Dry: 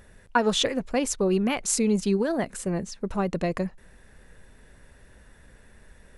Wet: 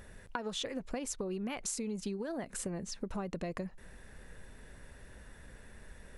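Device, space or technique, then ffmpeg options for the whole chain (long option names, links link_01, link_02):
serial compression, peaks first: -af "acompressor=threshold=-31dB:ratio=5,acompressor=threshold=-36dB:ratio=2.5"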